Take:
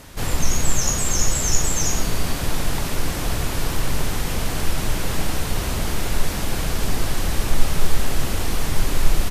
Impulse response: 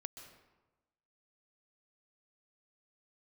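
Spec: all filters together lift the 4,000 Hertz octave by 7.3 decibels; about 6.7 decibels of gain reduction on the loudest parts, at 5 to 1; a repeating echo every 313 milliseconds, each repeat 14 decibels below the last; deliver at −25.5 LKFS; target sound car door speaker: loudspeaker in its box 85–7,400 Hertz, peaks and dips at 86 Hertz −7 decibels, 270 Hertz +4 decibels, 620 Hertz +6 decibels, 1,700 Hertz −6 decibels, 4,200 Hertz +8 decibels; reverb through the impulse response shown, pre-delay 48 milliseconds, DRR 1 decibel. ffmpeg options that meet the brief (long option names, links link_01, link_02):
-filter_complex "[0:a]equalizer=frequency=4000:width_type=o:gain=4.5,acompressor=threshold=-13dB:ratio=5,aecho=1:1:313|626:0.2|0.0399,asplit=2[link_01][link_02];[1:a]atrim=start_sample=2205,adelay=48[link_03];[link_02][link_03]afir=irnorm=-1:irlink=0,volume=3dB[link_04];[link_01][link_04]amix=inputs=2:normalize=0,highpass=85,equalizer=frequency=86:width_type=q:width=4:gain=-7,equalizer=frequency=270:width_type=q:width=4:gain=4,equalizer=frequency=620:width_type=q:width=4:gain=6,equalizer=frequency=1700:width_type=q:width=4:gain=-6,equalizer=frequency=4200:width_type=q:width=4:gain=8,lowpass=frequency=7400:width=0.5412,lowpass=frequency=7400:width=1.3066,volume=-4dB"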